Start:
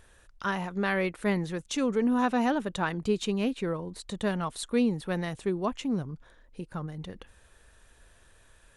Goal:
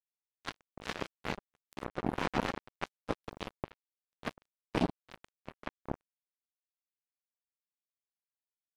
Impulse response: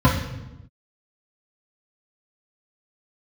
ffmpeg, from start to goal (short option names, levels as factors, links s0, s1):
-filter_complex "[0:a]asplit=4[s0][s1][s2][s3];[s1]asetrate=29433,aresample=44100,atempo=1.49831,volume=0.178[s4];[s2]asetrate=55563,aresample=44100,atempo=0.793701,volume=0.251[s5];[s3]asetrate=88200,aresample=44100,atempo=0.5,volume=0.2[s6];[s0][s4][s5][s6]amix=inputs=4:normalize=0,afftfilt=real='hypot(re,im)*cos(2*PI*random(0))':imag='hypot(re,im)*sin(2*PI*random(1))':win_size=512:overlap=0.75,acrusher=bits=3:mix=0:aa=0.5,volume=1.19"